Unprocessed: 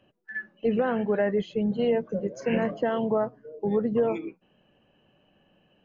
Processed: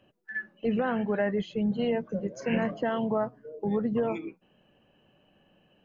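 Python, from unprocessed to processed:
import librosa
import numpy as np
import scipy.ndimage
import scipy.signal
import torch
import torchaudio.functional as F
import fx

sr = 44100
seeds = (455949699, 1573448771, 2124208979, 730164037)

y = fx.dynamic_eq(x, sr, hz=450.0, q=1.4, threshold_db=-36.0, ratio=4.0, max_db=-5)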